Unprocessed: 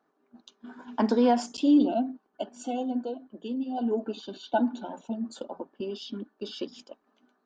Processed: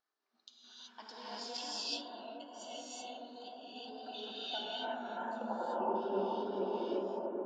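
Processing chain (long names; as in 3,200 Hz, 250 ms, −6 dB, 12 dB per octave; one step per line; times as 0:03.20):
downward compressor, threshold −28 dBFS, peak gain reduction 11.5 dB
band-pass filter sweep 4,700 Hz → 780 Hz, 0:03.79–0:05.78
reverb whose tail is shaped and stops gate 400 ms rising, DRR −8 dB
tape wow and flutter 27 cents
on a send: bucket-brigade delay 430 ms, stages 4,096, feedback 67%, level −3.5 dB
0:03.69–0:04.34: on the sum: transient designer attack +2 dB, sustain +7 dB
high-shelf EQ 3,600 Hz −7 dB
level +3.5 dB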